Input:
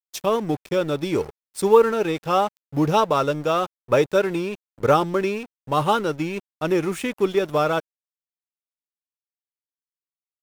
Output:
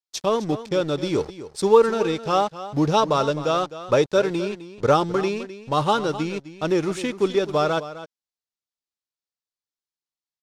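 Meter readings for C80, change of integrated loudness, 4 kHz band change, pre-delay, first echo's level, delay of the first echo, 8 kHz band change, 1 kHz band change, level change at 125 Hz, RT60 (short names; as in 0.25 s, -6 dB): none, 0.0 dB, +2.5 dB, none, -14.0 dB, 0.258 s, +0.5 dB, -0.5 dB, 0.0 dB, none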